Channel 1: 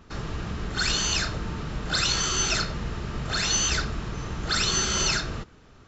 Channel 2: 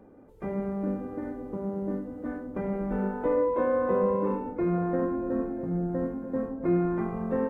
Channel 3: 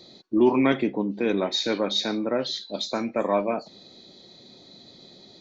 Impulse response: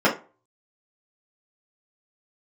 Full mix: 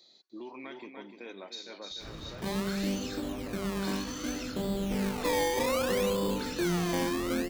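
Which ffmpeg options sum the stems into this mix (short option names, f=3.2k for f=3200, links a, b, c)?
-filter_complex "[0:a]flanger=delay=18:depth=7.3:speed=0.5,adelay=1900,volume=-3.5dB[a];[1:a]tiltshelf=f=970:g=3.5,acrusher=samples=22:mix=1:aa=0.000001:lfo=1:lforange=22:lforate=0.65,adelay=2000,volume=-3dB[b];[2:a]highpass=f=610:p=1,highshelf=f=3.8k:g=9.5,volume=-14dB,asplit=2[c][d];[d]volume=-11dB[e];[a][c]amix=inputs=2:normalize=0,acompressor=threshold=-40dB:ratio=6,volume=0dB[f];[e]aecho=0:1:297|594|891|1188:1|0.29|0.0841|0.0244[g];[b][f][g]amix=inputs=3:normalize=0,asoftclip=type=tanh:threshold=-23dB"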